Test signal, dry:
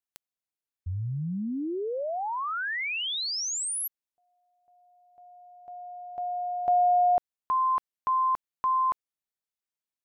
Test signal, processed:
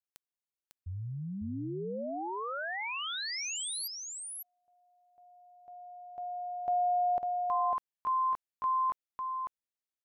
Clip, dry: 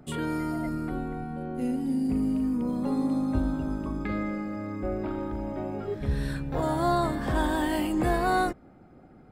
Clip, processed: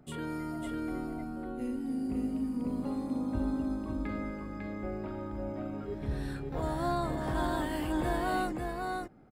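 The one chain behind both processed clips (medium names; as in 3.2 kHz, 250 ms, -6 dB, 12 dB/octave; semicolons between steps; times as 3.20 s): delay 550 ms -4 dB; trim -7 dB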